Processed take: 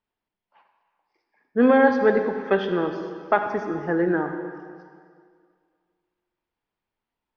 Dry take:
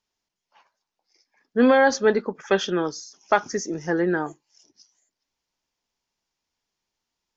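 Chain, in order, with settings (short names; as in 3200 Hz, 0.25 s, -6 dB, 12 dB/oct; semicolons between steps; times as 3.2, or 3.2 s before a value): Gaussian blur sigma 2.9 samples; reverb RT60 2.1 s, pre-delay 47 ms, DRR 6 dB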